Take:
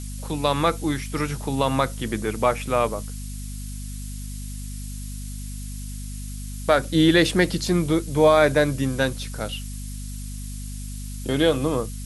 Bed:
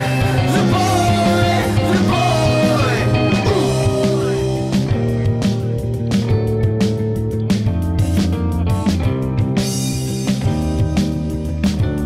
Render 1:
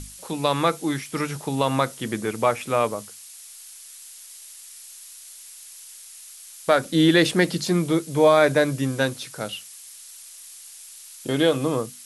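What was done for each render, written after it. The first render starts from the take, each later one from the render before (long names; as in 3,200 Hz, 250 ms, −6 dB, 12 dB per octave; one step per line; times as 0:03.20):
mains-hum notches 50/100/150/200/250 Hz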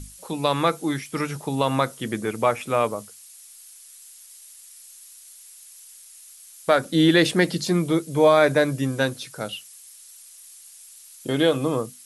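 broadband denoise 6 dB, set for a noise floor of −44 dBFS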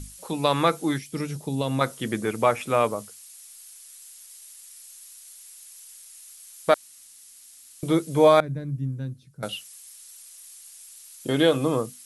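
0:00.98–0:01.81: drawn EQ curve 180 Hz 0 dB, 550 Hz −5 dB, 1,200 Hz −13 dB, 4,200 Hz −3 dB
0:06.74–0:07.83: fill with room tone
0:08.40–0:09.43: drawn EQ curve 160 Hz 0 dB, 290 Hz −12 dB, 630 Hz −26 dB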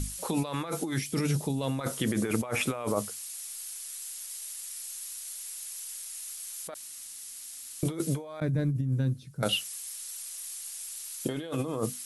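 compressor whose output falls as the input rises −31 dBFS, ratio −1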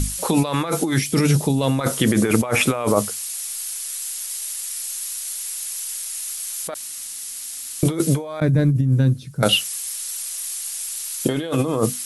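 level +11 dB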